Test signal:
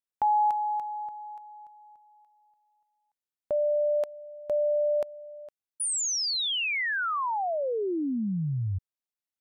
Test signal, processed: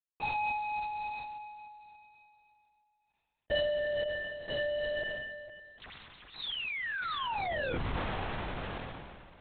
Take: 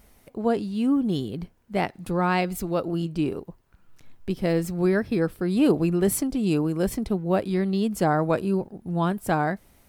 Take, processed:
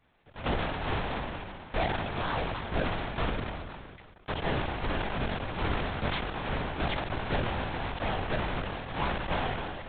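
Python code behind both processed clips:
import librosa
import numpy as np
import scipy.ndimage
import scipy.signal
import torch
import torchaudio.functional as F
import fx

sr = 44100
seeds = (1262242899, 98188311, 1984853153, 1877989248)

p1 = fx.halfwave_hold(x, sr)
p2 = scipy.signal.sosfilt(scipy.signal.butter(2, 420.0, 'highpass', fs=sr, output='sos'), p1)
p3 = fx.rider(p2, sr, range_db=5, speed_s=0.5)
p4 = p3 + fx.echo_feedback(p3, sr, ms=281, feedback_pct=42, wet_db=-19.5, dry=0)
p5 = fx.lpc_vocoder(p4, sr, seeds[0], excitation='whisper', order=8)
p6 = fx.sustainer(p5, sr, db_per_s=29.0)
y = p6 * 10.0 ** (-8.5 / 20.0)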